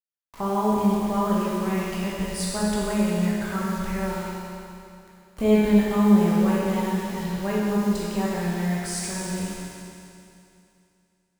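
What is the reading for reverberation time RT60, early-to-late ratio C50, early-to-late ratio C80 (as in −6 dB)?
2.7 s, −2.5 dB, −1.0 dB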